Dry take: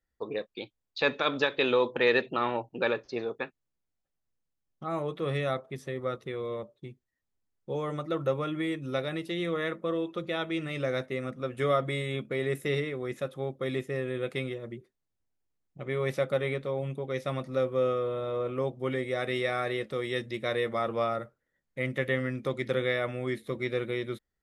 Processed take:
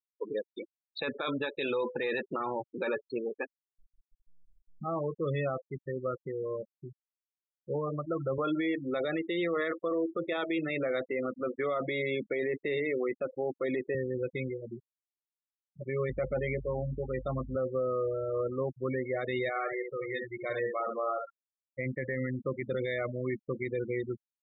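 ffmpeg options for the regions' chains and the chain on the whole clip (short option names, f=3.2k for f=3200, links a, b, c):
-filter_complex "[0:a]asettb=1/sr,asplit=3[a][b][c];[a]atrim=end=1.154[d];[b]atrim=start=1.15:end=4.96,asetpts=PTS-STARTPTS,afade=t=in:d=0.004:c=qsin,afade=t=out:st=3.806:d=0.004:c=qsin,acompressor=mode=upward:threshold=-34dB:ratio=2.5:attack=3.2:release=140:knee=2.83:detection=peak,asplit=2[e][f];[f]adelay=14,volume=-11dB[g];[e][g]amix=inputs=2:normalize=0,atrim=end_sample=168021[h];[c]atrim=start=4.956[i];[d][h]acrossfade=d=0.004:c1=hsin:c2=qsin[j];[j][i]acrossfade=d=0.004:c1=qsin:c2=hsin,asettb=1/sr,asplit=3[k][l][m];[k]atrim=end=8.384[n];[l]atrim=start=8.38:end=13.95,asetpts=PTS-STARTPTS,afade=t=in:d=0.004:c=qsin,afade=t=out:st=5.566:d=0.004:c=qsin,highpass=270,lowpass=3.6k,acontrast=59[o];[m]atrim=start=13.946[p];[n][o]acrossfade=d=0.004:c1=hsin:c2=qsin[q];[q][p]acrossfade=d=0.004:c1=qsin:c2=hsin,asettb=1/sr,asplit=3[r][s][t];[r]atrim=end=16.094[u];[s]atrim=start=16.09:end=17.56,asetpts=PTS-STARTPTS,afade=t=in:d=0.004:c=qsin,afade=t=out:st=1.466:d=0.004:c=qsin,highpass=110,aeval=exprs='val(0)+0.00708*(sin(2*PI*50*n/s)+sin(2*PI*2*50*n/s)/2+sin(2*PI*3*50*n/s)/3+sin(2*PI*4*50*n/s)/4+sin(2*PI*5*50*n/s)/5)':c=same,asplit=2[v][w];[w]adelay=16,volume=-9dB[x];[v][x]amix=inputs=2:normalize=0,atrim=end_sample=64827[y];[t]atrim=start=17.556[z];[u][y]acrossfade=d=0.004:c1=hsin:c2=qsin[aa];[aa][z]acrossfade=d=0.004:c1=qsin:c2=hsin,asettb=1/sr,asplit=3[ab][ac][ad];[ab]atrim=end=19.494[ae];[ac]atrim=start=19.49:end=21.79,asetpts=PTS-STARTPTS,afade=t=in:d=0.004:c=qsin,afade=t=out:st=2.296:d=0.004:c=qsin,acrossover=split=3300[af][ag];[ag]acompressor=threshold=-55dB:ratio=4:attack=1:release=60[ah];[af][ah]amix=inputs=2:normalize=0,equalizer=f=160:w=0.31:g=-7,aecho=1:1:67|134|201:0.631|0.126|0.0252,atrim=end_sample=101430[ai];[ad]atrim=start=21.786[aj];[ae][ai]acrossfade=d=0.004:c1=hsin:c2=qsin[ak];[ak][aj]acrossfade=d=0.004:c1=qsin:c2=hsin,afftfilt=real='re*gte(hypot(re,im),0.0447)':imag='im*gte(hypot(re,im),0.0447)':win_size=1024:overlap=0.75,alimiter=limit=-23.5dB:level=0:latency=1:release=12"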